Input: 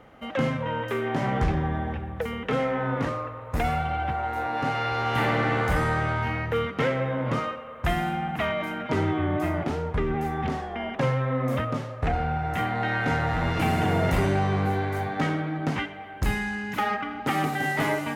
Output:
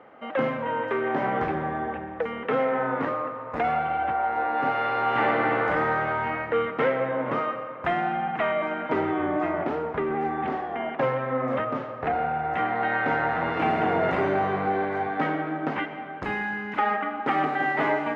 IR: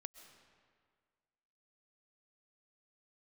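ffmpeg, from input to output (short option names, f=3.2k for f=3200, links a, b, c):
-filter_complex "[0:a]highpass=340,lowpass=2k,asplit=2[a][b];[1:a]atrim=start_sample=2205,lowshelf=f=110:g=11[c];[b][c]afir=irnorm=-1:irlink=0,volume=12dB[d];[a][d]amix=inputs=2:normalize=0,volume=-6.5dB"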